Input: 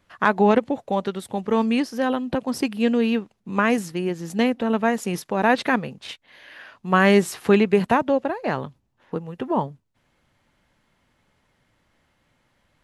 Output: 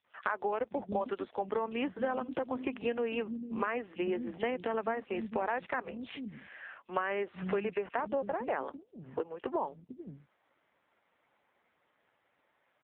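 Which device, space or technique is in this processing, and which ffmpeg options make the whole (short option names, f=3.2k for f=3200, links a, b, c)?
voicemail: -filter_complex "[0:a]asettb=1/sr,asplit=3[a][b][c];[a]atrim=end=5.994[d];[b]atrim=start=5.99:end=6.72,asetpts=PTS-STARTPTS,afade=t=in:d=0.004:c=qsin,afade=t=out:st=0.726:d=0.004:c=qsin,lowshelf=f=320:g=-5[e];[c]atrim=start=6.716[f];[d][e]acrossfade=d=0.004:c1=hsin:c2=qsin[g];[g][f]acrossfade=d=0.004:c1=qsin:c2=hsin,highpass=330,lowpass=2.8k,acrossover=split=220|3800[h][i][j];[i]adelay=40[k];[h]adelay=490[l];[l][k][j]amix=inputs=3:normalize=0,acompressor=threshold=-28dB:ratio=12" -ar 8000 -c:a libopencore_amrnb -b:a 5900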